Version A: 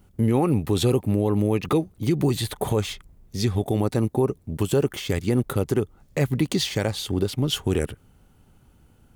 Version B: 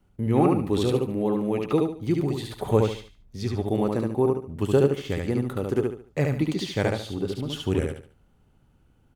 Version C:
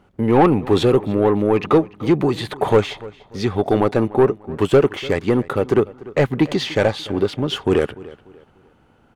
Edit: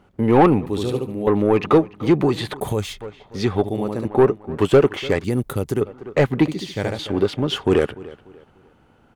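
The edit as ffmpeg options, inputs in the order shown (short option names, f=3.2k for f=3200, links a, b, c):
-filter_complex "[1:a]asplit=3[a][b][c];[0:a]asplit=2[d][e];[2:a]asplit=6[f][g][h][i][j][k];[f]atrim=end=0.662[l];[a]atrim=start=0.658:end=1.272[m];[g]atrim=start=1.268:end=2.602[n];[d]atrim=start=2.598:end=3.012[o];[h]atrim=start=3.008:end=3.642[p];[b]atrim=start=3.638:end=4.052[q];[i]atrim=start=4.048:end=5.242[r];[e]atrim=start=5.238:end=5.812[s];[j]atrim=start=5.808:end=6.482[t];[c]atrim=start=6.478:end=6.992[u];[k]atrim=start=6.988[v];[l][m]acrossfade=d=0.004:c1=hsin:c2=hsin[w];[w][n]acrossfade=d=0.004:c1=hsin:c2=hsin[x];[x][o]acrossfade=d=0.004:c1=hsin:c2=hsin[y];[y][p]acrossfade=d=0.004:c1=hsin:c2=hsin[z];[z][q]acrossfade=d=0.004:c1=hsin:c2=hsin[aa];[aa][r]acrossfade=d=0.004:c1=hsin:c2=hsin[ab];[ab][s]acrossfade=d=0.004:c1=hsin:c2=hsin[ac];[ac][t]acrossfade=d=0.004:c1=hsin:c2=hsin[ad];[ad][u]acrossfade=d=0.004:c1=hsin:c2=hsin[ae];[ae][v]acrossfade=d=0.004:c1=hsin:c2=hsin"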